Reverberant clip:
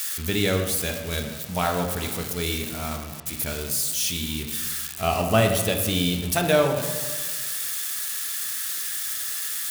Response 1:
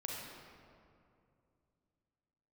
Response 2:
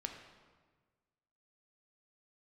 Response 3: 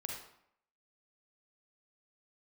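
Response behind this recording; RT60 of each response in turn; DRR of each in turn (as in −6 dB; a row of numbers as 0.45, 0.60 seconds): 2; 2.5, 1.5, 0.70 seconds; −3.0, 3.0, −0.5 decibels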